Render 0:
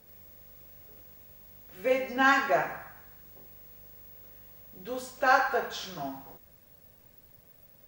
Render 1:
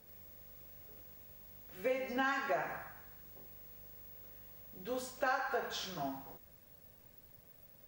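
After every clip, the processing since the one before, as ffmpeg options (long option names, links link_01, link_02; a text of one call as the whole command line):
ffmpeg -i in.wav -af "acompressor=threshold=-28dB:ratio=6,volume=-3dB" out.wav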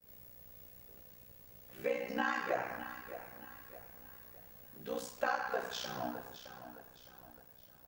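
ffmpeg -i in.wav -af "aecho=1:1:614|1228|1842|2456:0.237|0.0972|0.0399|0.0163,agate=range=-33dB:threshold=-58dB:ratio=3:detection=peak,aeval=exprs='val(0)*sin(2*PI*31*n/s)':channel_layout=same,volume=2.5dB" out.wav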